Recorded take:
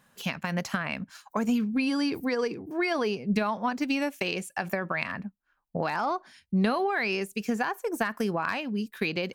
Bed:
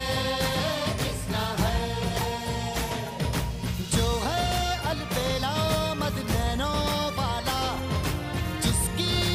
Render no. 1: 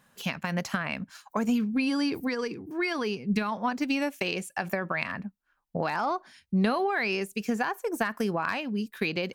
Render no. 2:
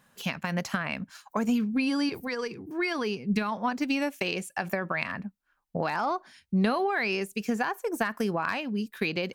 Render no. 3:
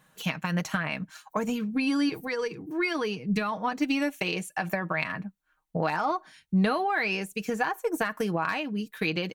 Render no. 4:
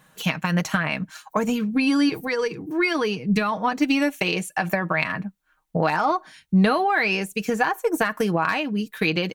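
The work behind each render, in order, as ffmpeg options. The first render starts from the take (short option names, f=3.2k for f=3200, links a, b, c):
-filter_complex "[0:a]asettb=1/sr,asplit=3[a][b][c];[a]atrim=end=2.274[d];[b]atrim=start=2.27:end=3.52,asetpts=PTS-STARTPTS,afade=t=in:d=0.004:c=qsin,afade=t=out:st=1.246:d=0.004:c=qsin,equalizer=f=630:t=o:w=0.79:g=-8.5[e];[c]atrim=start=3.516[f];[d][e]acrossfade=d=0.004:c1=hsin:c2=qsin[g];[g][f]acrossfade=d=0.004:c1=qsin:c2=hsin"
-filter_complex "[0:a]asettb=1/sr,asplit=3[a][b][c];[a]atrim=end=2.094[d];[b]atrim=start=2.09:end=2.59,asetpts=PTS-STARTPTS,afade=t=in:d=0.004:c=qsin,afade=t=out:st=0.496:d=0.004:c=qsin,equalizer=f=290:w=3.7:g=-12.5[e];[c]atrim=start=2.586[f];[d][e]acrossfade=d=0.004:c1=hsin:c2=qsin[g];[g][f]acrossfade=d=0.004:c1=qsin:c2=hsin"
-af "bandreject=f=5k:w=8.4,aecho=1:1:6.4:0.51"
-af "volume=6dB"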